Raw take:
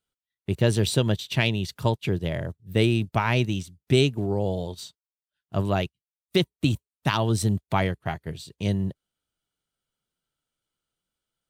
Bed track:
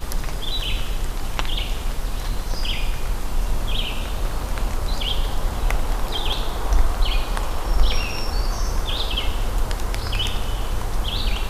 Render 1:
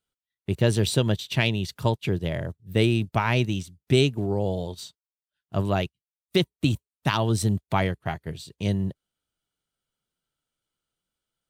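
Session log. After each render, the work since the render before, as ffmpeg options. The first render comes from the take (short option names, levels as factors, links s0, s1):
-af anull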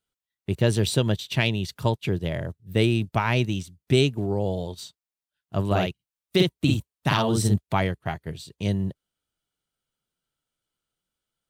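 -filter_complex "[0:a]asettb=1/sr,asplit=3[s0][s1][s2];[s0]atrim=end=5.664[s3];[s1]atrim=start=5.66:end=7.56,asetpts=PTS-STARTPTS,afade=t=in:d=0.004:c=qsin,afade=t=out:st=1.896:d=0.004:c=qsin,asplit=2[s4][s5];[s5]adelay=49,volume=0.794[s6];[s4][s6]amix=inputs=2:normalize=0,atrim=end_sample=83790[s7];[s2]atrim=start=7.556[s8];[s3][s7]acrossfade=d=0.004:c1=hsin:c2=qsin[s9];[s9][s8]acrossfade=d=0.004:c1=qsin:c2=hsin"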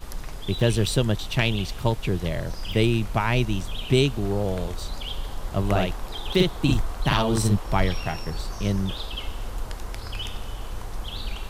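-filter_complex "[1:a]volume=0.355[s0];[0:a][s0]amix=inputs=2:normalize=0"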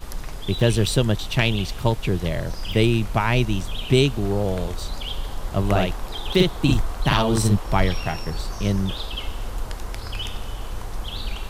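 -af "volume=1.33"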